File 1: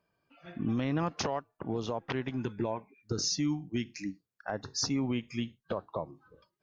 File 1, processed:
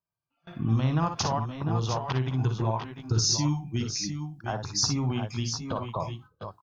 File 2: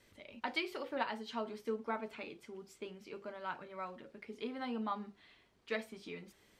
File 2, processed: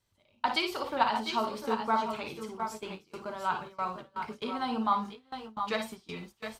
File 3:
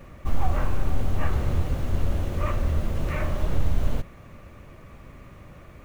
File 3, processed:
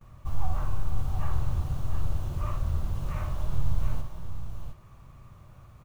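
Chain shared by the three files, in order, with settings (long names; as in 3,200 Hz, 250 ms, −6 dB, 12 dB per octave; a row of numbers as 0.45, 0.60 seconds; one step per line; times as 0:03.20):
graphic EQ with 10 bands 125 Hz +5 dB, 250 Hz −8 dB, 500 Hz −8 dB, 1,000 Hz +4 dB, 2,000 Hz −10 dB
multi-tap delay 45/54/62/697/716 ms −17.5/−9.5/−10.5/−11/−9 dB
noise gate with hold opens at −42 dBFS
normalise the peak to −12 dBFS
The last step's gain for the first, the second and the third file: +7.0, +12.5, −6.0 decibels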